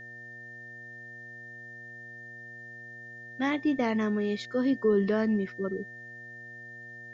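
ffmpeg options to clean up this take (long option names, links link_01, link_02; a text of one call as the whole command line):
ffmpeg -i in.wav -af "bandreject=frequency=119.8:width_type=h:width=4,bandreject=frequency=239.6:width_type=h:width=4,bandreject=frequency=359.4:width_type=h:width=4,bandreject=frequency=479.2:width_type=h:width=4,bandreject=frequency=599:width_type=h:width=4,bandreject=frequency=718.8:width_type=h:width=4,bandreject=frequency=1800:width=30,agate=range=-21dB:threshold=-37dB" out.wav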